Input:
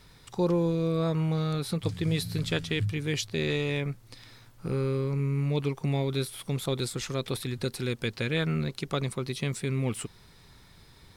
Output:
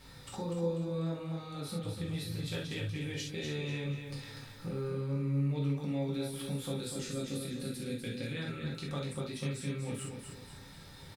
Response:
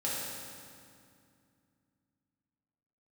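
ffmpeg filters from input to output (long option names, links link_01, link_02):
-filter_complex "[0:a]asettb=1/sr,asplit=3[link_01][link_02][link_03];[link_01]atrim=end=6.864[link_04];[link_02]atrim=start=6.86:end=8.29,asetpts=PTS-STARTPTS,afade=type=in:duration=0.004:curve=qsin,afade=type=out:start_time=1.426:duration=0.004:curve=qsin,equalizer=frequency=250:width_type=o:width=0.67:gain=7,equalizer=frequency=1000:width_type=o:width=0.67:gain=-10,equalizer=frequency=10000:width_type=o:width=0.67:gain=4[link_05];[link_03]atrim=start=8.286[link_06];[link_04][link_05]acrossfade=duration=0.004:curve1=hsin:curve2=qsin[link_07];[link_07][link_06]acrossfade=duration=0.004:curve1=qsin:curve2=hsin,acompressor=threshold=-44dB:ratio=2.5,aecho=1:1:245|490|735|980:0.473|0.175|0.0648|0.024[link_08];[1:a]atrim=start_sample=2205,atrim=end_sample=3528[link_09];[link_08][link_09]afir=irnorm=-1:irlink=0"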